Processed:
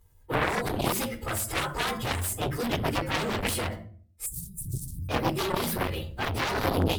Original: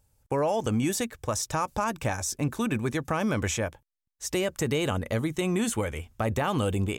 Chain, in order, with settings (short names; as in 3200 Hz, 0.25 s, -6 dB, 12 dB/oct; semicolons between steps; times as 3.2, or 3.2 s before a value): inharmonic rescaling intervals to 111%; reverb RT60 0.45 s, pre-delay 3 ms, DRR 8 dB; added harmonics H 7 -7 dB, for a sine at -13.5 dBFS; 4.26–5.09 elliptic band-stop 140–8300 Hz, stop band 60 dB; core saturation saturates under 350 Hz